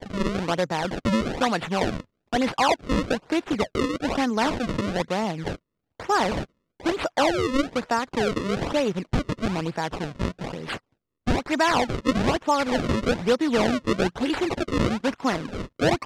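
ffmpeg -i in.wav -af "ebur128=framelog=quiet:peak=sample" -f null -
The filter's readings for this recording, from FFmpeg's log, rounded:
Integrated loudness:
  I:         -25.2 LUFS
  Threshold: -35.4 LUFS
Loudness range:
  LRA:         3.3 LU
  Threshold: -45.4 LUFS
  LRA low:   -27.0 LUFS
  LRA high:  -23.6 LUFS
Sample peak:
  Peak:       -9.6 dBFS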